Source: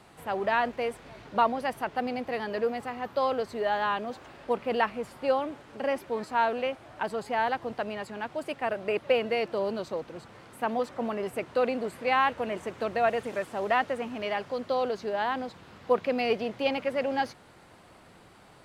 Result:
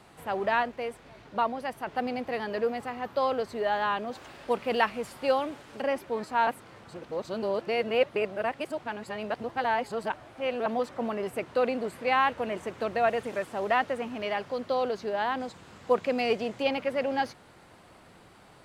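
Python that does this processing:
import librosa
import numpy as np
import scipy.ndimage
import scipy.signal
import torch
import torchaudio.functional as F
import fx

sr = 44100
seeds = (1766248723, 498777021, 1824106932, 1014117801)

y = fx.high_shelf(x, sr, hz=2500.0, db=7.0, at=(4.15, 5.82))
y = fx.peak_eq(y, sr, hz=7500.0, db=8.5, octaves=0.6, at=(15.4, 16.63))
y = fx.edit(y, sr, fx.clip_gain(start_s=0.63, length_s=1.24, db=-3.5),
    fx.reverse_span(start_s=6.47, length_s=4.19), tone=tone)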